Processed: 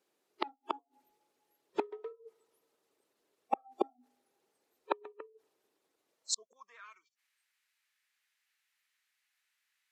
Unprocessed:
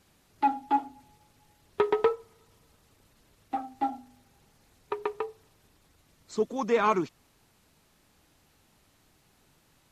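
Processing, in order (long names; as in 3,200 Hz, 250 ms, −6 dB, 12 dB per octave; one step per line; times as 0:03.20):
noise reduction from a noise print of the clip's start 30 dB
gate with flip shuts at −31 dBFS, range −41 dB
high-pass filter sweep 390 Hz → 1,900 Hz, 0:06.06–0:06.94
level +14.5 dB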